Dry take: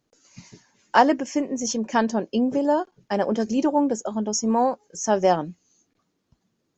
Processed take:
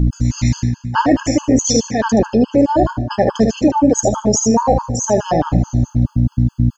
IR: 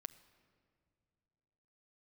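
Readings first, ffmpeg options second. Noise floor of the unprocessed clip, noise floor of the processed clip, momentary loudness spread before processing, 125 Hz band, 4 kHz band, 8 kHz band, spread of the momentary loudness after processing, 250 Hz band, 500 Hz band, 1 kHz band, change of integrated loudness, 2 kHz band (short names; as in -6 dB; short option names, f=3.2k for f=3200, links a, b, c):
-75 dBFS, -48 dBFS, 7 LU, +23.5 dB, +8.5 dB, n/a, 4 LU, +9.0 dB, +7.0 dB, +4.5 dB, +7.0 dB, +3.0 dB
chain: -filter_complex "[0:a]aeval=exprs='val(0)+0.02*(sin(2*PI*60*n/s)+sin(2*PI*2*60*n/s)/2+sin(2*PI*3*60*n/s)/3+sin(2*PI*4*60*n/s)/4+sin(2*PI*5*60*n/s)/5)':c=same,areverse,acompressor=threshold=-32dB:ratio=20,areverse,aecho=1:1:75|150|225:0.501|0.13|0.0339[a];[1:a]atrim=start_sample=2205[b];[a][b]afir=irnorm=-1:irlink=0,alimiter=level_in=31dB:limit=-1dB:release=50:level=0:latency=1,afftfilt=real='re*gt(sin(2*PI*4.7*pts/sr)*(1-2*mod(floor(b*sr/1024/860),2)),0)':imag='im*gt(sin(2*PI*4.7*pts/sr)*(1-2*mod(floor(b*sr/1024/860),2)),0)':win_size=1024:overlap=0.75,volume=-1dB"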